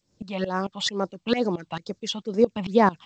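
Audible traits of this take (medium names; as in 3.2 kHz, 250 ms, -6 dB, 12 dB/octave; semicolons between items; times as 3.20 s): phasing stages 6, 2.2 Hz, lowest notch 410–3200 Hz; tremolo saw up 4.5 Hz, depth 90%; G.722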